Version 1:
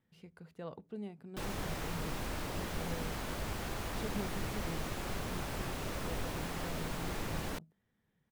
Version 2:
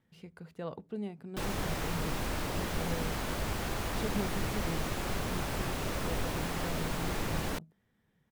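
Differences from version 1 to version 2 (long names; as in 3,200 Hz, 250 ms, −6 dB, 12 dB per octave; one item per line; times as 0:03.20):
speech +5.0 dB
background +4.5 dB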